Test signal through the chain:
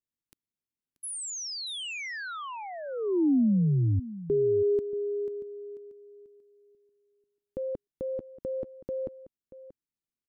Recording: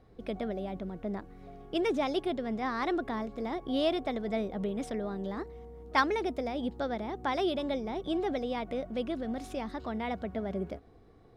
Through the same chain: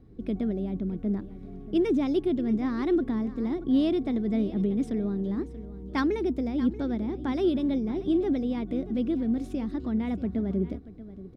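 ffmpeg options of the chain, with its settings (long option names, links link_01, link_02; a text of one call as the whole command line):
ffmpeg -i in.wav -filter_complex "[0:a]lowshelf=frequency=440:width_type=q:width=1.5:gain=11.5,asplit=2[link_01][link_02];[link_02]aecho=0:1:633:0.168[link_03];[link_01][link_03]amix=inputs=2:normalize=0,volume=-4.5dB" out.wav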